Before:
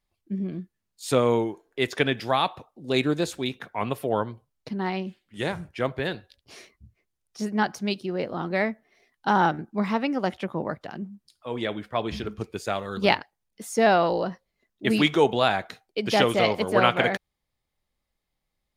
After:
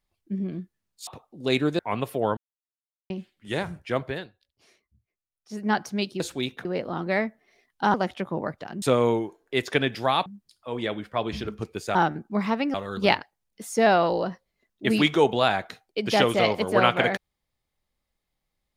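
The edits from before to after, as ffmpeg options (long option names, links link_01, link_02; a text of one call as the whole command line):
ffmpeg -i in.wav -filter_complex "[0:a]asplit=14[link_01][link_02][link_03][link_04][link_05][link_06][link_07][link_08][link_09][link_10][link_11][link_12][link_13][link_14];[link_01]atrim=end=1.072[link_15];[link_02]atrim=start=2.508:end=3.232[link_16];[link_03]atrim=start=3.678:end=4.26,asetpts=PTS-STARTPTS,afade=type=out:start_time=0.578:duration=0.004:curve=hsin[link_17];[link_04]atrim=start=4.26:end=4.99,asetpts=PTS-STARTPTS,volume=0[link_18];[link_05]atrim=start=4.99:end=6.27,asetpts=PTS-STARTPTS,afade=type=in:duration=0.004:curve=hsin,afade=type=out:start_time=0.97:duration=0.31:curve=qua:silence=0.188365[link_19];[link_06]atrim=start=6.27:end=7.25,asetpts=PTS-STARTPTS,volume=-14.5dB[link_20];[link_07]atrim=start=7.25:end=8.092,asetpts=PTS-STARTPTS,afade=type=in:duration=0.31:curve=qua:silence=0.188365[link_21];[link_08]atrim=start=3.228:end=3.682[link_22];[link_09]atrim=start=8.088:end=9.382[link_23];[link_10]atrim=start=10.168:end=11.052[link_24];[link_11]atrim=start=1.068:end=2.512[link_25];[link_12]atrim=start=11.048:end=12.742[link_26];[link_13]atrim=start=9.378:end=10.172[link_27];[link_14]atrim=start=12.738[link_28];[link_15][link_16]acrossfade=duration=0.004:curve1=hsin:curve2=hsin[link_29];[link_17][link_18][link_19][link_20][link_21]concat=n=5:v=0:a=1[link_30];[link_29][link_30]acrossfade=duration=0.004:curve1=hsin:curve2=hsin[link_31];[link_31][link_22]acrossfade=duration=0.004:curve1=hsin:curve2=hsin[link_32];[link_32][link_23]acrossfade=duration=0.004:curve1=hsin:curve2=hsin[link_33];[link_33][link_24]acrossfade=duration=0.004:curve1=hsin:curve2=hsin[link_34];[link_34][link_25]acrossfade=duration=0.004:curve1=hsin:curve2=hsin[link_35];[link_35][link_26]acrossfade=duration=0.004:curve1=hsin:curve2=hsin[link_36];[link_36][link_27]acrossfade=duration=0.004:curve1=hsin:curve2=hsin[link_37];[link_37][link_28]acrossfade=duration=0.004:curve1=hsin:curve2=hsin" out.wav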